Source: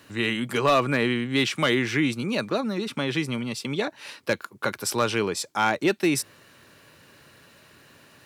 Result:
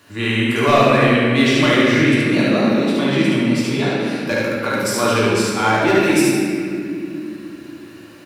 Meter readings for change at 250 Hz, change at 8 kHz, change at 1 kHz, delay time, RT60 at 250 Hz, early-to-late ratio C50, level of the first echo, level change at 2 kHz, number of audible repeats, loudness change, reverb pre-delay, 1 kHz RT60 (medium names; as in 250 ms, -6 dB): +11.0 dB, +6.0 dB, +8.0 dB, 73 ms, 4.4 s, -4.0 dB, -1.5 dB, +8.5 dB, 1, +9.0 dB, 3 ms, 2.1 s